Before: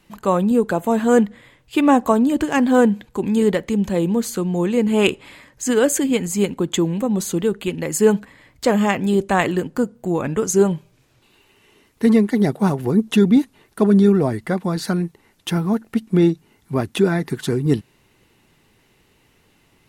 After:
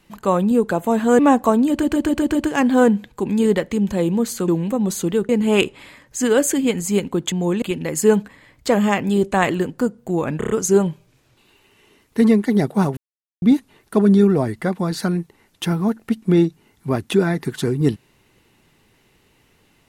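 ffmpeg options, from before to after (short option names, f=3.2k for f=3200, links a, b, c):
-filter_complex "[0:a]asplit=17[a][b][c][d][e][f][g][h][i][j][k][l][m][n][o][p][q];[a]atrim=end=1.192[r];[b]atrim=start=1.808:end=2.452[s];[c]atrim=start=2.318:end=2.452[t];[d]atrim=start=2.318:end=2.452[u];[e]atrim=start=2.318:end=2.452[v];[f]atrim=start=2.318:end=2.452[w];[g]atrim=start=2.318:end=4.452[x];[h]atrim=start=6.778:end=7.592[y];[i]atrim=start=4.748:end=6.782[z];[j]atrim=start=4.448:end=4.752[aa];[k]atrim=start=7.588:end=10.382[ab];[l]atrim=start=10.348:end=10.382[ac];[m]atrim=start=10.348:end=10.382[ad];[n]atrim=start=10.348:end=10.382[ae];[o]atrim=start=10.348:end=12.82,asetpts=PTS-STARTPTS,afade=t=out:st=2.468:d=0.004:c=hsin[af];[p]atrim=start=12.82:end=13.27,asetpts=PTS-STARTPTS,volume=0[ag];[q]atrim=start=13.27,asetpts=PTS-STARTPTS,afade=t=in:d=0.004:c=hsin[ah];[r][s]acrossfade=d=0.004:c1=hsin:c2=hsin[ai];[ai][t]acrossfade=d=0.004:c1=hsin:c2=hsin[aj];[aj][u]acrossfade=d=0.004:c1=hsin:c2=hsin[ak];[ak][v]acrossfade=d=0.004:c1=hsin:c2=hsin[al];[al][w]acrossfade=d=0.004:c1=hsin:c2=hsin[am];[am][x]acrossfade=d=0.004:c1=hsin:c2=hsin[an];[an][y]acrossfade=d=0.004:c1=hsin:c2=hsin[ao];[ao][z]acrossfade=d=0.004:c1=hsin:c2=hsin[ap];[ap][aa]acrossfade=d=0.004:c1=hsin:c2=hsin[aq];[aq][ab]acrossfade=d=0.004:c1=hsin:c2=hsin[ar];[ar][ac]acrossfade=d=0.004:c1=hsin:c2=hsin[as];[as][ad]acrossfade=d=0.004:c1=hsin:c2=hsin[at];[at][ae]acrossfade=d=0.004:c1=hsin:c2=hsin[au];[af][ag][ah]concat=n=3:v=0:a=1[av];[au][av]acrossfade=d=0.004:c1=hsin:c2=hsin"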